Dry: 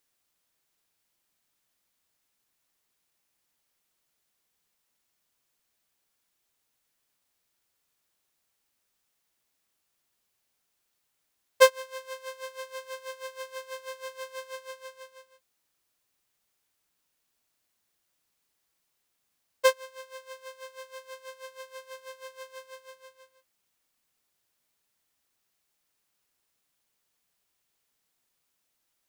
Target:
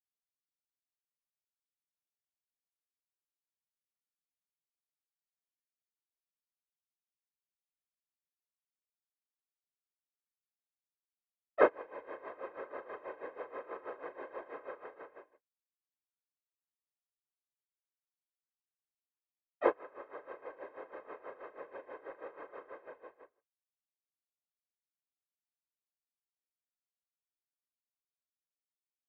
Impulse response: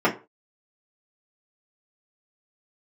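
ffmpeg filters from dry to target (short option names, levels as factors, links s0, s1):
-filter_complex "[0:a]lowpass=f=1800:w=0.5412,lowpass=f=1800:w=1.3066,asplit=3[s0][s1][s2];[s1]asetrate=35002,aresample=44100,atempo=1.25992,volume=0.631[s3];[s2]asetrate=52444,aresample=44100,atempo=0.840896,volume=0.447[s4];[s0][s3][s4]amix=inputs=3:normalize=0,asplit=2[s5][s6];[s6]acompressor=threshold=0.00447:ratio=6,volume=1.26[s7];[s5][s7]amix=inputs=2:normalize=0,agate=range=0.0224:threshold=0.00631:ratio=3:detection=peak,afftfilt=real='hypot(re,im)*cos(2*PI*random(0))':imag='hypot(re,im)*sin(2*PI*random(1))':win_size=512:overlap=0.75,volume=0.75"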